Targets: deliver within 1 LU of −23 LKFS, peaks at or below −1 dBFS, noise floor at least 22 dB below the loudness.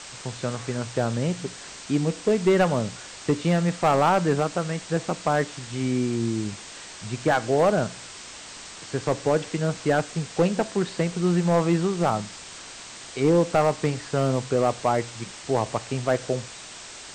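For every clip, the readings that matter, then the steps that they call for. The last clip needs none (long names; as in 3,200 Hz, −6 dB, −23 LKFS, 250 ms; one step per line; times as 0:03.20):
share of clipped samples 0.8%; peaks flattened at −13.0 dBFS; background noise floor −41 dBFS; target noise floor −47 dBFS; integrated loudness −24.5 LKFS; sample peak −13.0 dBFS; target loudness −23.0 LKFS
→ clipped peaks rebuilt −13 dBFS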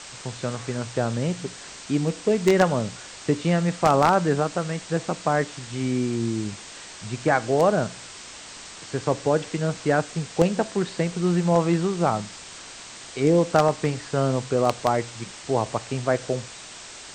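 share of clipped samples 0.0%; background noise floor −41 dBFS; target noise floor −46 dBFS
→ broadband denoise 6 dB, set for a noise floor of −41 dBFS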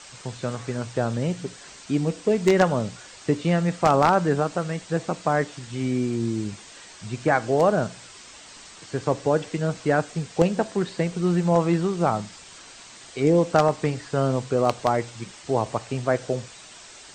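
background noise floor −46 dBFS; integrated loudness −24.0 LKFS; sample peak −4.0 dBFS; target loudness −23.0 LKFS
→ level +1 dB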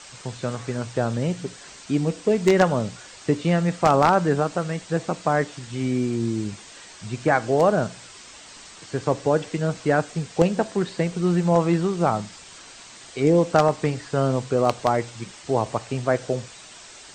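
integrated loudness −23.0 LKFS; sample peak −3.0 dBFS; background noise floor −45 dBFS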